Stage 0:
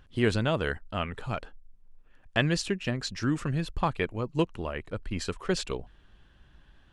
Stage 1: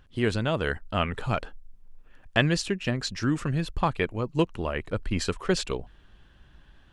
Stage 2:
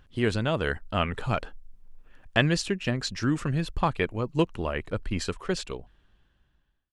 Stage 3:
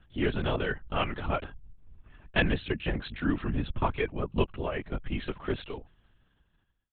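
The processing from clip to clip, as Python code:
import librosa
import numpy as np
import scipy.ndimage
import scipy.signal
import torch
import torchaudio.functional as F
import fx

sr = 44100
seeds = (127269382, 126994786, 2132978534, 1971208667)

y1 = fx.rider(x, sr, range_db=3, speed_s=0.5)
y1 = y1 * 10.0 ** (2.5 / 20.0)
y2 = fx.fade_out_tail(y1, sr, length_s=2.21)
y3 = fx.lpc_vocoder(y2, sr, seeds[0], excitation='whisper', order=10)
y3 = y3 * 10.0 ** (-2.5 / 20.0)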